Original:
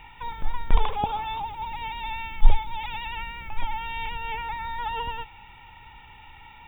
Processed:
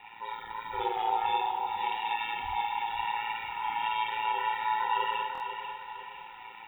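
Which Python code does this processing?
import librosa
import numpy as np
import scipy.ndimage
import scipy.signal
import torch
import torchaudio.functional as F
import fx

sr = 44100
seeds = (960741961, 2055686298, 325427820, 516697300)

p1 = fx.hpss_only(x, sr, part='harmonic')
p2 = scipy.signal.sosfilt(scipy.signal.butter(2, 210.0, 'highpass', fs=sr, output='sos'), p1)
p3 = fx.rev_schroeder(p2, sr, rt60_s=0.59, comb_ms=26, drr_db=-2.0)
p4 = p3 * np.sin(2.0 * np.pi * 56.0 * np.arange(len(p3)) / sr)
p5 = p4 + fx.echo_feedback(p4, sr, ms=494, feedback_pct=45, wet_db=-8, dry=0)
y = fx.buffer_glitch(p5, sr, at_s=(5.33,), block=1024, repeats=2)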